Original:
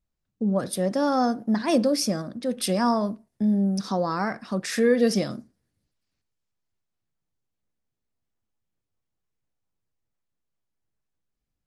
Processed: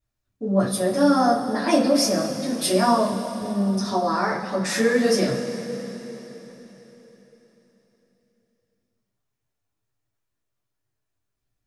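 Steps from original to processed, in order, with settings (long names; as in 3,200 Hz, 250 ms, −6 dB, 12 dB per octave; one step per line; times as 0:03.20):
flanger 1.3 Hz, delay 6.2 ms, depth 5.8 ms, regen −37%
coupled-rooms reverb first 0.23 s, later 4.1 s, from −19 dB, DRR −8.5 dB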